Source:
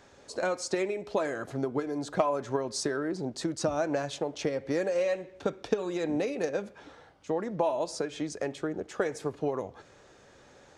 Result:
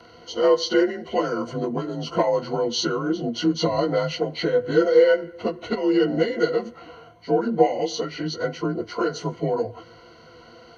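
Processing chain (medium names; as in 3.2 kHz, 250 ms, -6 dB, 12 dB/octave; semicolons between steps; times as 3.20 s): frequency axis rescaled in octaves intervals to 89%; rippled EQ curve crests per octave 1.9, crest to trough 16 dB; trim +8 dB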